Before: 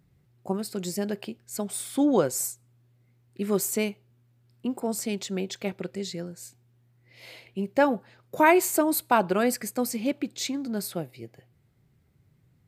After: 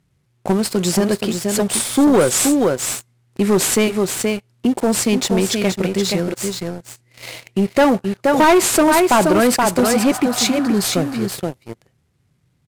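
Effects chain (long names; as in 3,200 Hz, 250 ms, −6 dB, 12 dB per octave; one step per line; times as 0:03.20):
variable-slope delta modulation 64 kbit/s
healed spectral selection 0:09.82–0:10.79, 600–1,900 Hz both
single-tap delay 475 ms −6.5 dB
leveller curve on the samples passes 3
in parallel at 0 dB: downward compressor, threshold −26 dBFS, peak gain reduction 13 dB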